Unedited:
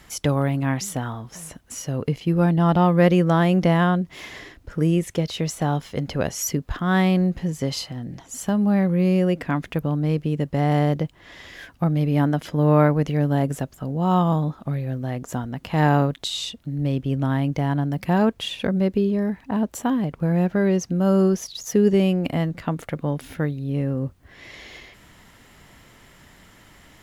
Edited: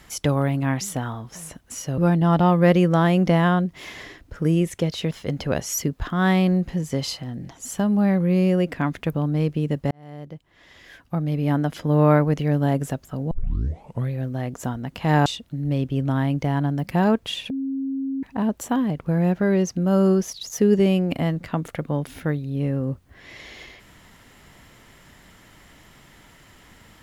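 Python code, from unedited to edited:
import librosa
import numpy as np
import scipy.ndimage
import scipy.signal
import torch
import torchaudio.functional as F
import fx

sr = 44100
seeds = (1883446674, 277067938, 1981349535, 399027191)

y = fx.edit(x, sr, fx.cut(start_s=1.98, length_s=0.36),
    fx.cut(start_s=5.47, length_s=0.33),
    fx.fade_in_span(start_s=10.6, length_s=1.98),
    fx.tape_start(start_s=14.0, length_s=0.8),
    fx.cut(start_s=15.95, length_s=0.45),
    fx.bleep(start_s=18.64, length_s=0.73, hz=270.0, db=-23.5), tone=tone)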